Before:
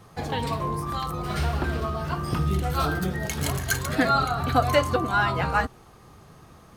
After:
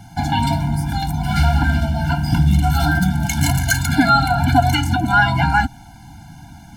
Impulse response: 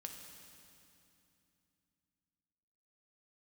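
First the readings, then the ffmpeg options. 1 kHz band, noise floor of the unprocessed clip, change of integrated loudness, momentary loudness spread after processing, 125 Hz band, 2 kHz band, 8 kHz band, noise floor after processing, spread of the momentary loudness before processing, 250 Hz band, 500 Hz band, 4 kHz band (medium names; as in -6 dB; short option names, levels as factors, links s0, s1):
+7.5 dB, -51 dBFS, +8.5 dB, 6 LU, +11.0 dB, +8.5 dB, +7.5 dB, -41 dBFS, 8 LU, +10.0 dB, -0.5 dB, +8.0 dB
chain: -filter_complex "[0:a]asplit=2[s0][s1];[s1]alimiter=limit=0.133:level=0:latency=1:release=136,volume=1.19[s2];[s0][s2]amix=inputs=2:normalize=0,afftfilt=real='re*eq(mod(floor(b*sr/1024/340),2),0)':imag='im*eq(mod(floor(b*sr/1024/340),2),0)':win_size=1024:overlap=0.75,volume=1.78"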